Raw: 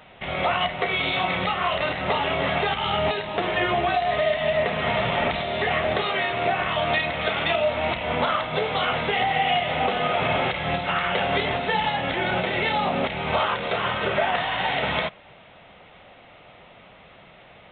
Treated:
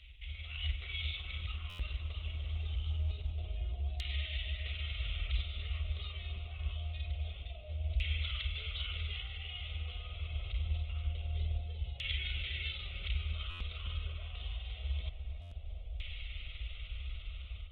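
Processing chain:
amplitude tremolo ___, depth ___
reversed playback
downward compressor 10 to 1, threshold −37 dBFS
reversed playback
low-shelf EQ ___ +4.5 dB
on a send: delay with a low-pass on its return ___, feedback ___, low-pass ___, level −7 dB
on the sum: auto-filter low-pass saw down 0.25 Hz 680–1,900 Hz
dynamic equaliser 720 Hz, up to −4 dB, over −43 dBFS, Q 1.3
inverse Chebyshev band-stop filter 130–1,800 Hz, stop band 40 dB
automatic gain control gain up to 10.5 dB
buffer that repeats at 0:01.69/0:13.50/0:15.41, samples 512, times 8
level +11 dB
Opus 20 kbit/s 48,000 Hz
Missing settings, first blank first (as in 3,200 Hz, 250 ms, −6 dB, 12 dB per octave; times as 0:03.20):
20 Hz, 37%, 210 Hz, 359 ms, 51%, 2,200 Hz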